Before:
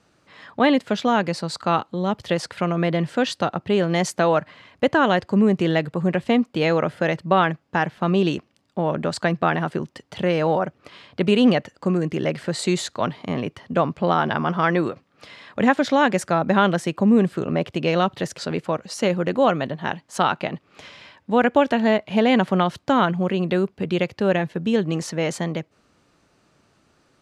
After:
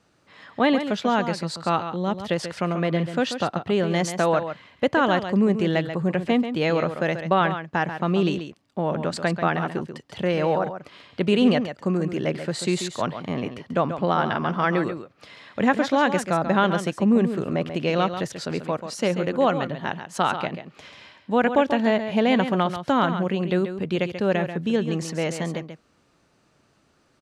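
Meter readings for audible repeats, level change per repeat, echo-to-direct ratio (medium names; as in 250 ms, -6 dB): 1, no regular repeats, -9.5 dB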